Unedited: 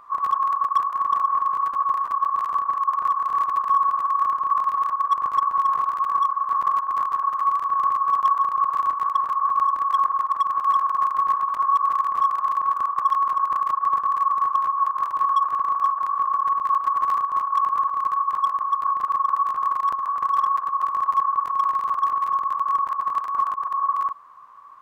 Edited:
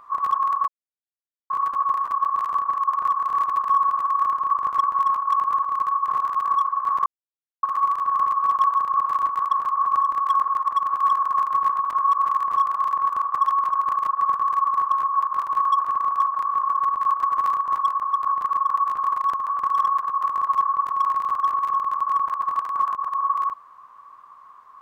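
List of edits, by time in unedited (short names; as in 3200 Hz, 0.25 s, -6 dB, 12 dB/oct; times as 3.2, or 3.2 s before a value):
0.68–1.5 mute
4.57–5.16 cut
6.7–7.27 mute
17.4–18.35 move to 5.74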